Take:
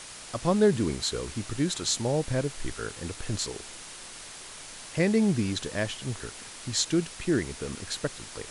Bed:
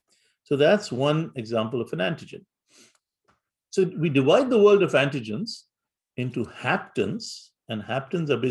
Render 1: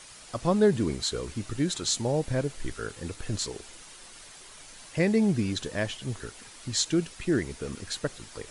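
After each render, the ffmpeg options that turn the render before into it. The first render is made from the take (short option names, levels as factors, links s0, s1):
-af "afftdn=nr=7:nf=-44"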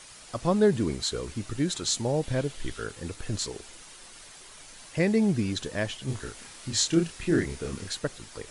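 -filter_complex "[0:a]asettb=1/sr,asplit=3[s0][s1][s2];[s0]atrim=end=2.234[s3];[s1]atrim=start=2.23:end=2.84,asetpts=PTS-STARTPTS,afade=t=in:d=0.004:c=qsin,afade=t=out:st=0.606:d=0.004:c=qsin,equalizer=f=3300:t=o:w=0.58:g=6[s4];[s2]atrim=start=2.836[s5];[s3][s4]acrossfade=d=0.004:c1=hsin:c2=qsin[s6];[s6][s5]acrossfade=d=0.004:c1=qsin:c2=hsin,asettb=1/sr,asplit=3[s7][s8][s9];[s7]atrim=end=6.054[s10];[s8]atrim=start=6.05:end=7.91,asetpts=PTS-STARTPTS,afade=t=in:d=0.004:c=qsin,afade=t=out:st=1.856:d=0.004:c=qsin,asplit=2[s11][s12];[s12]adelay=30,volume=0.708[s13];[s11][s13]amix=inputs=2:normalize=0,atrim=end_sample=82026[s14];[s9]atrim=start=7.906[s15];[s10][s14]acrossfade=d=0.004:c1=hsin:c2=qsin[s16];[s16][s15]acrossfade=d=0.004:c1=qsin:c2=hsin"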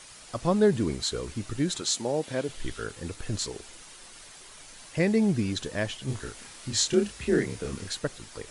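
-filter_complex "[0:a]asettb=1/sr,asplit=3[s0][s1][s2];[s0]atrim=end=1.814[s3];[s1]atrim=start=1.81:end=2.49,asetpts=PTS-STARTPTS,afade=t=in:d=0.004:c=qsin,afade=t=out:st=0.676:d=0.004:c=qsin,highpass=220[s4];[s2]atrim=start=2.486[s5];[s3][s4]acrossfade=d=0.004:c1=hsin:c2=qsin[s6];[s6][s5]acrossfade=d=0.004:c1=qsin:c2=hsin,asettb=1/sr,asplit=3[s7][s8][s9];[s7]atrim=end=6.934[s10];[s8]atrim=start=6.93:end=7.63,asetpts=PTS-STARTPTS,afade=t=in:d=0.004:c=qsin,afade=t=out:st=0.696:d=0.004:c=qsin,afreqshift=39[s11];[s9]atrim=start=7.626[s12];[s10][s11]acrossfade=d=0.004:c1=hsin:c2=qsin[s13];[s13][s12]acrossfade=d=0.004:c1=qsin:c2=hsin"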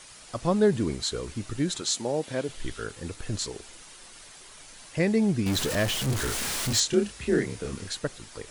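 -filter_complex "[0:a]asettb=1/sr,asplit=3[s0][s1][s2];[s0]atrim=end=5.464[s3];[s1]atrim=start=5.46:end=6.8,asetpts=PTS-STARTPTS,afade=t=in:d=0.004:c=qsin,afade=t=out:st=1.336:d=0.004:c=qsin,aeval=exprs='val(0)+0.5*0.0531*sgn(val(0))':c=same[s4];[s2]atrim=start=6.796[s5];[s3][s4]acrossfade=d=0.004:c1=hsin:c2=qsin[s6];[s6][s5]acrossfade=d=0.004:c1=qsin:c2=hsin"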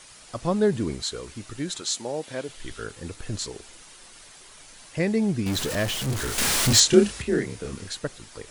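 -filter_complex "[0:a]asettb=1/sr,asplit=3[s0][s1][s2];[s0]atrim=end=1.024[s3];[s1]atrim=start=1.02:end=2.7,asetpts=PTS-STARTPTS,afade=t=in:d=0.004:c=qsin,afade=t=out:st=1.676:d=0.004:c=qsin,lowshelf=f=410:g=-5.5[s4];[s2]atrim=start=2.696[s5];[s3][s4]acrossfade=d=0.004:c1=hsin:c2=qsin[s6];[s6][s5]acrossfade=d=0.004:c1=qsin:c2=hsin,asplit=3[s7][s8][s9];[s7]atrim=end=6.382[s10];[s8]atrim=start=6.378:end=7.222,asetpts=PTS-STARTPTS,volume=2.37[s11];[s9]atrim=start=7.218[s12];[s10][s11]acrossfade=d=0.004:c1=hsin:c2=hsin[s13];[s13][s12]acrossfade=d=0.004:c1=hsin:c2=hsin"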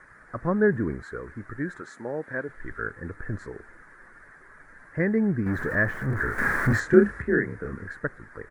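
-af "firequalizer=gain_entry='entry(440,0);entry(740,-5);entry(1700,11);entry(2800,-29);entry(13000,-22)':delay=0.05:min_phase=1"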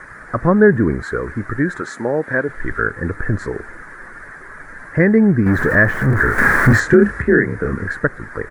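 -filter_complex "[0:a]asplit=2[s0][s1];[s1]acompressor=threshold=0.0282:ratio=6,volume=0.891[s2];[s0][s2]amix=inputs=2:normalize=0,alimiter=level_in=2.82:limit=0.891:release=50:level=0:latency=1"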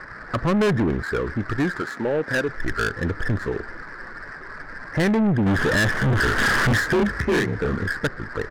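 -af "asoftclip=type=tanh:threshold=0.15,adynamicsmooth=sensitivity=6.5:basefreq=1600"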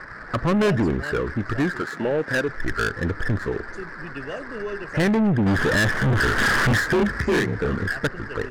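-filter_complex "[1:a]volume=0.168[s0];[0:a][s0]amix=inputs=2:normalize=0"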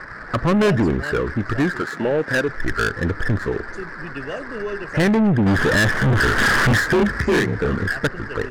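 -af "volume=1.41"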